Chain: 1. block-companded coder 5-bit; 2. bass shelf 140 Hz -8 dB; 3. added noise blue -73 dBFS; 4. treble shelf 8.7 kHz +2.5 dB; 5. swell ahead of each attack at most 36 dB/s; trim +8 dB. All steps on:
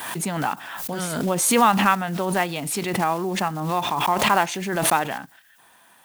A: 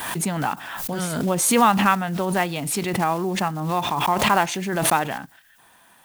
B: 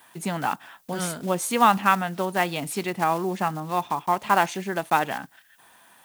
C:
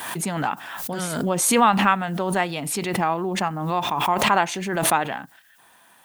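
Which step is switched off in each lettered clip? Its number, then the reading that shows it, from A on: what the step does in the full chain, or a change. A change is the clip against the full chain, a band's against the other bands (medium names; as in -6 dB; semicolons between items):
2, 125 Hz band +2.0 dB; 5, crest factor change +2.0 dB; 1, distortion -22 dB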